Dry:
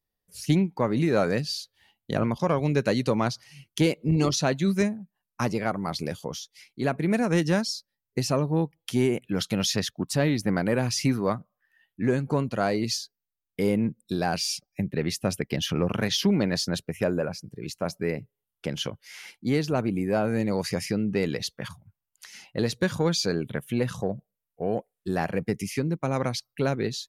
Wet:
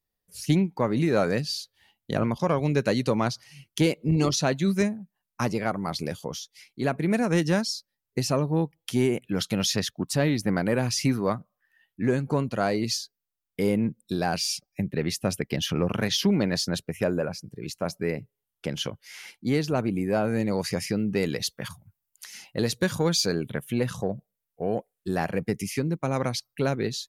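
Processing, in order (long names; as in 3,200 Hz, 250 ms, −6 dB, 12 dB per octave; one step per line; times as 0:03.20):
high-shelf EQ 7,600 Hz +2 dB, from 0:20.96 +10 dB, from 0:23.46 +4 dB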